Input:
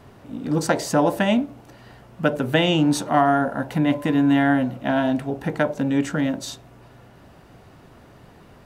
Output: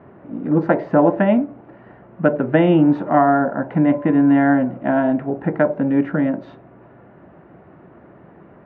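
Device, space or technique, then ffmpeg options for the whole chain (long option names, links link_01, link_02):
bass cabinet: -af "highpass=89,equalizer=frequency=110:width_type=q:width=4:gain=-5,equalizer=frequency=180:width_type=q:width=4:gain=5,equalizer=frequency=340:width_type=q:width=4:gain=7,equalizer=frequency=600:width_type=q:width=4:gain=4,lowpass=frequency=2000:width=0.5412,lowpass=frequency=2000:width=1.3066,volume=1.5dB"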